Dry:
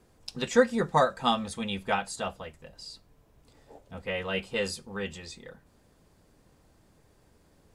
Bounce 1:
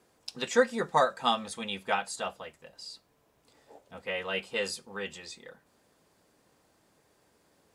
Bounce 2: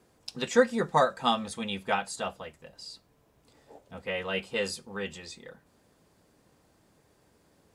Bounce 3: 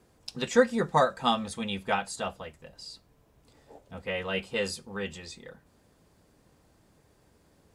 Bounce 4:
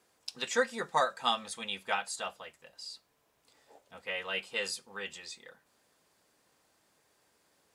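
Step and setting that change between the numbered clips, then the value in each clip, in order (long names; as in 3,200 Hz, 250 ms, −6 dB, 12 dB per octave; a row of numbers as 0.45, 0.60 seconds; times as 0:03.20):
high-pass filter, corner frequency: 410, 150, 52, 1,200 Hertz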